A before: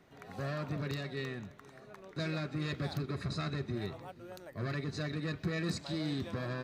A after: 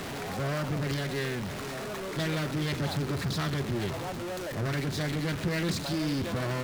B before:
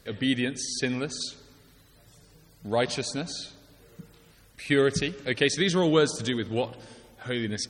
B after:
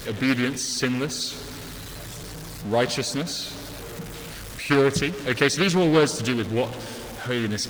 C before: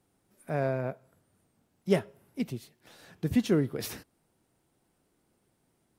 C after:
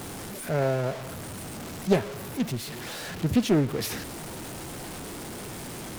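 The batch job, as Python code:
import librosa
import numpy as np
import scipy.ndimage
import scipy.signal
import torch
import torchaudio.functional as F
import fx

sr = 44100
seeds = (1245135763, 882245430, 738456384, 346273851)

y = x + 0.5 * 10.0 ** (-34.0 / 20.0) * np.sign(x)
y = fx.doppler_dist(y, sr, depth_ms=0.39)
y = F.gain(torch.from_numpy(y), 2.5).numpy()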